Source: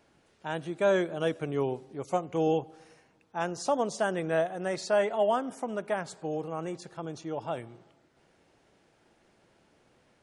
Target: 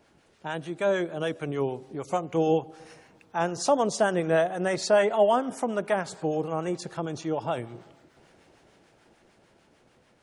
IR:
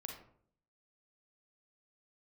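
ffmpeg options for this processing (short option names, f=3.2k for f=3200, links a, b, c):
-filter_complex "[0:a]dynaudnorm=f=520:g=9:m=6dB,acrossover=split=810[a][b];[a]aeval=exprs='val(0)*(1-0.5/2+0.5/2*cos(2*PI*6.7*n/s))':c=same[c];[b]aeval=exprs='val(0)*(1-0.5/2-0.5/2*cos(2*PI*6.7*n/s))':c=same[d];[c][d]amix=inputs=2:normalize=0,asplit=2[e][f];[f]acompressor=threshold=-38dB:ratio=6,volume=-1dB[g];[e][g]amix=inputs=2:normalize=0"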